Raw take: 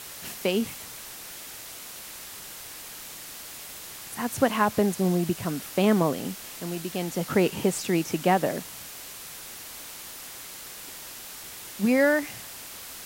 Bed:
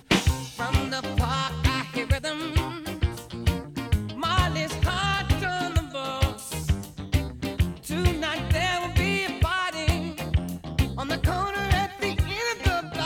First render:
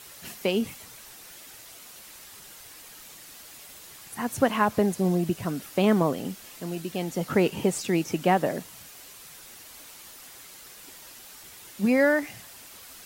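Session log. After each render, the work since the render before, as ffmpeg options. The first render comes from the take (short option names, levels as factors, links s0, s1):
-af "afftdn=nr=7:nf=-42"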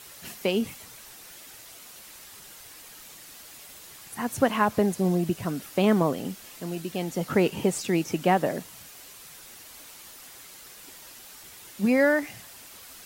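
-af anull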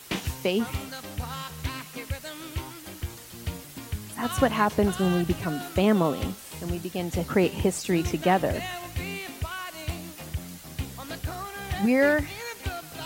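-filter_complex "[1:a]volume=0.335[s0];[0:a][s0]amix=inputs=2:normalize=0"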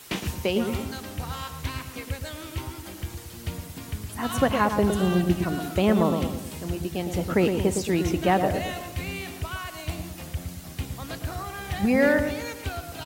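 -filter_complex "[0:a]asplit=2[s0][s1];[s1]adelay=112,lowpass=f=970:p=1,volume=0.562,asplit=2[s2][s3];[s3]adelay=112,lowpass=f=970:p=1,volume=0.53,asplit=2[s4][s5];[s5]adelay=112,lowpass=f=970:p=1,volume=0.53,asplit=2[s6][s7];[s7]adelay=112,lowpass=f=970:p=1,volume=0.53,asplit=2[s8][s9];[s9]adelay=112,lowpass=f=970:p=1,volume=0.53,asplit=2[s10][s11];[s11]adelay=112,lowpass=f=970:p=1,volume=0.53,asplit=2[s12][s13];[s13]adelay=112,lowpass=f=970:p=1,volume=0.53[s14];[s0][s2][s4][s6][s8][s10][s12][s14]amix=inputs=8:normalize=0"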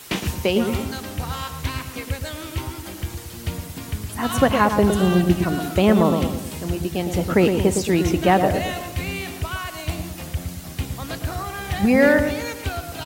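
-af "volume=1.78,alimiter=limit=0.708:level=0:latency=1"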